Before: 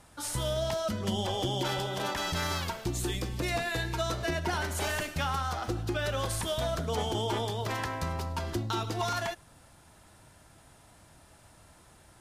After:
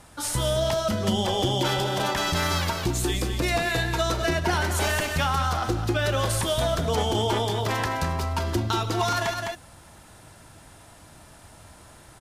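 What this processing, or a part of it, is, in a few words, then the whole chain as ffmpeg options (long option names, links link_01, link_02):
ducked delay: -filter_complex "[0:a]asplit=3[link_01][link_02][link_03];[link_02]adelay=208,volume=-4dB[link_04];[link_03]apad=whole_len=547313[link_05];[link_04][link_05]sidechaincompress=threshold=-35dB:ratio=8:attack=16:release=186[link_06];[link_01][link_06]amix=inputs=2:normalize=0,volume=6.5dB"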